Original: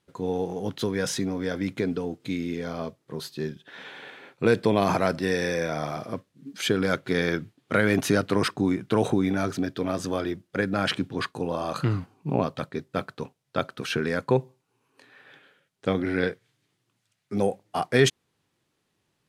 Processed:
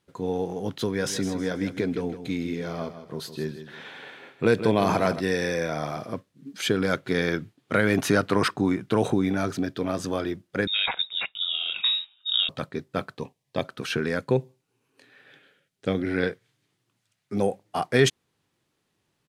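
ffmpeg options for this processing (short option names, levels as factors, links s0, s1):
-filter_complex "[0:a]asplit=3[s0][s1][s2];[s0]afade=t=out:st=1.01:d=0.02[s3];[s1]aecho=1:1:159|318|477|636:0.282|0.0986|0.0345|0.0121,afade=t=in:st=1.01:d=0.02,afade=t=out:st=5.19:d=0.02[s4];[s2]afade=t=in:st=5.19:d=0.02[s5];[s3][s4][s5]amix=inputs=3:normalize=0,asettb=1/sr,asplit=3[s6][s7][s8];[s6]atrim=end=8.004[s9];[s7]atrim=start=8:end=8.81,asetpts=PTS-STARTPTS,afade=t=in:d=0.004:c=qsin,afade=t=out:st=0.806:d=0.004:c=qsin,equalizer=f=1200:w=0.82:g=4[s10];[s8]atrim=start=8.806[s11];[s9][s10]acrossfade=d=0.004:c1=hsin:c2=qsin[s12];[s12][s11]acrossfade=d=0.004:c1=qsin:c2=hsin,asettb=1/sr,asplit=3[s13][s14][s15];[s13]atrim=end=10.674[s16];[s14]atrim=start=10.67:end=12.49,asetpts=PTS-STARTPTS,afade=t=in:d=0.004:c=qsin,afade=t=out:st=1.816:d=0.004:c=qsin,lowpass=f=3300:t=q:w=0.5098,lowpass=f=3300:t=q:w=0.6013,lowpass=f=3300:t=q:w=0.9,lowpass=f=3300:t=q:w=2.563,afreqshift=-3900[s17];[s15]atrim=start=12.486[s18];[s16][s17]acrossfade=d=0.004:c1=hsin:c2=qsin[s19];[s19][s18]acrossfade=d=0.004:c1=qsin:c2=hsin,asettb=1/sr,asplit=3[s20][s21][s22];[s20]atrim=end=13.174[s23];[s21]atrim=start=13.17:end=13.65,asetpts=PTS-STARTPTS,afade=t=in:d=0.004:c=qsin,afade=t=out:st=0.476:d=0.004:c=qsin,asuperstop=centerf=1400:order=4:qfactor=3.5[s24];[s22]atrim=start=13.646[s25];[s23][s24]acrossfade=d=0.004:c1=hsin:c2=qsin[s26];[s26][s25]acrossfade=d=0.004:c1=qsin:c2=hsin,asettb=1/sr,asplit=3[s27][s28][s29];[s27]atrim=end=14.184[s30];[s28]atrim=start=14.18:end=16.11,asetpts=PTS-STARTPTS,afade=t=in:d=0.004:c=qsin,afade=t=out:st=1.926:d=0.004:c=qsin,equalizer=f=1000:t=o:w=0.88:g=-7[s31];[s29]atrim=start=16.106[s32];[s30][s31]acrossfade=d=0.004:c1=hsin:c2=qsin[s33];[s33][s32]acrossfade=d=0.004:c1=qsin:c2=hsin"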